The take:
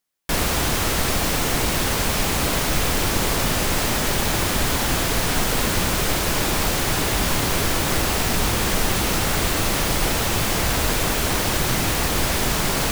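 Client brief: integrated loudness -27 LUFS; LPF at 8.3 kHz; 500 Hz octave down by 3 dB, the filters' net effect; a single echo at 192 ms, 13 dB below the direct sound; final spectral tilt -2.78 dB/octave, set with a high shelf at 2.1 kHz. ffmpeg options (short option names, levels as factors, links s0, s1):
-af "lowpass=8300,equalizer=f=500:t=o:g=-4.5,highshelf=f=2100:g=8.5,aecho=1:1:192:0.224,volume=0.335"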